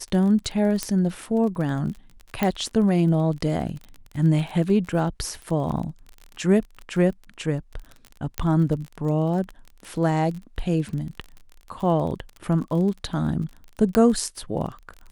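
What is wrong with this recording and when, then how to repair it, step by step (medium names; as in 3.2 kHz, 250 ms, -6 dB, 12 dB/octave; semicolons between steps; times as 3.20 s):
crackle 31 per s -31 dBFS
0.83 s: pop -9 dBFS
2.43 s: pop -9 dBFS
8.38 s: pop -9 dBFS
13.95 s: pop -7 dBFS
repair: de-click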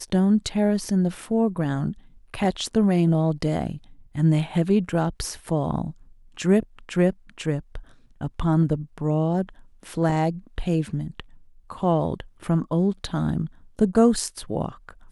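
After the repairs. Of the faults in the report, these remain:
13.95 s: pop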